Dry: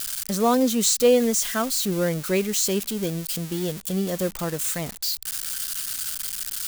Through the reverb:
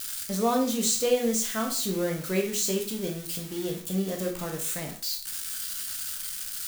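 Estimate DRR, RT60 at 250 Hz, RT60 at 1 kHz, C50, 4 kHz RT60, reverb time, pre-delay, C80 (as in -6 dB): 1.0 dB, 0.45 s, 0.45 s, 8.5 dB, 0.40 s, 0.45 s, 7 ms, 13.0 dB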